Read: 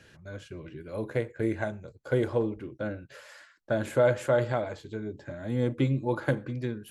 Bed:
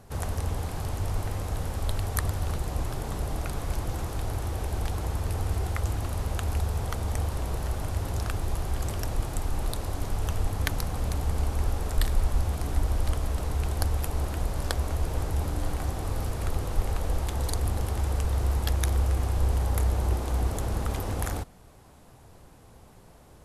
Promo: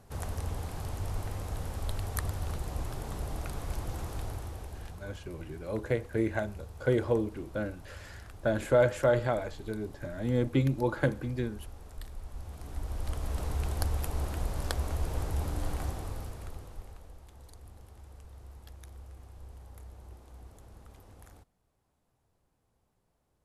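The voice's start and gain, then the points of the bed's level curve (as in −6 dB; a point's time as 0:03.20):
4.75 s, −0.5 dB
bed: 0:04.20 −5.5 dB
0:05.18 −18.5 dB
0:12.23 −18.5 dB
0:13.39 −4 dB
0:15.84 −4 dB
0:17.17 −23.5 dB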